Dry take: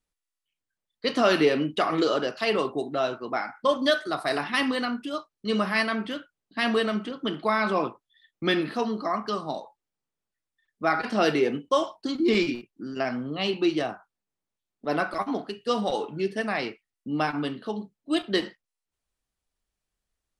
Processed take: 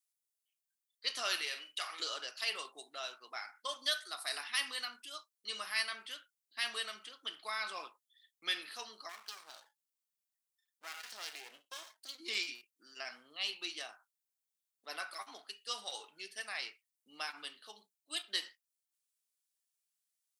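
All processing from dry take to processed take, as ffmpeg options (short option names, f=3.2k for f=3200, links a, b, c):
-filter_complex "[0:a]asettb=1/sr,asplit=3[a][b][c];[a]atrim=end=1.414[d];[b]atrim=start=1.41:end=2,asetpts=PTS-STARTPTS,afade=t=in:d=0.004:c=qsin,afade=t=out:st=0.586:d=0.004:c=qsin,highpass=f=880:p=1,asplit=2[e][f];[f]adelay=47,volume=-10dB[g];[e][g]amix=inputs=2:normalize=0,atrim=end_sample=26019[h];[c]atrim=start=1.996[i];[d][h]acrossfade=d=0.004:c1=hsin:c2=qsin[j];[j][i]acrossfade=d=0.004:c1=qsin:c2=hsin,asettb=1/sr,asplit=3[k][l][m];[k]atrim=end=9.094[n];[l]atrim=start=9.09:end=12.18,asetpts=PTS-STARTPTS,afade=t=in:d=0.004:c=qsin,afade=t=out:st=3.086:d=0.004:c=qsin,acompressor=threshold=-28dB:ratio=2:attack=3.2:release=140:knee=1:detection=peak,aeval=exprs='max(val(0),0)':c=same[o];[m]atrim=start=12.176[p];[n][o]acrossfade=d=0.004:c1=hsin:c2=qsin[q];[q][p]acrossfade=d=0.004:c1=qsin:c2=hsin,highpass=f=620:p=1,aderivative,volume=1.5dB"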